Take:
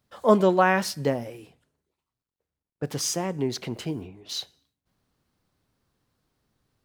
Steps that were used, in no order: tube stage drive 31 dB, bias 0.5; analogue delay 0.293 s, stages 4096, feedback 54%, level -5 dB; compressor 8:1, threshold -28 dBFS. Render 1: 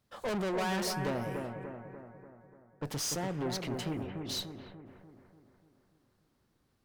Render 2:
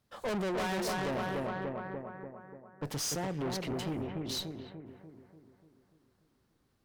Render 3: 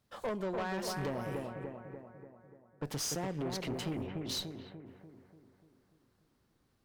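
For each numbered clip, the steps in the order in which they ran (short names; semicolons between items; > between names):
tube stage > compressor > analogue delay; analogue delay > tube stage > compressor; compressor > analogue delay > tube stage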